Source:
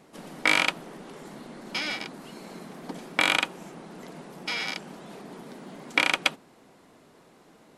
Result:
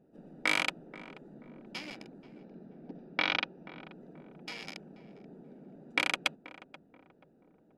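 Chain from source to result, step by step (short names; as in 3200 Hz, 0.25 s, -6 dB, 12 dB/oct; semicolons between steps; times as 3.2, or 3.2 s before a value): Wiener smoothing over 41 samples; 2.39–3.77 steep low-pass 5900 Hz 96 dB/oct; darkening echo 0.482 s, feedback 47%, low-pass 850 Hz, level -13 dB; gain -6.5 dB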